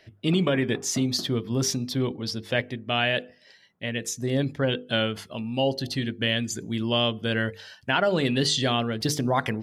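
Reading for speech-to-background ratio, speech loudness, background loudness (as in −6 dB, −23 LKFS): 19.0 dB, −26.0 LKFS, −45.0 LKFS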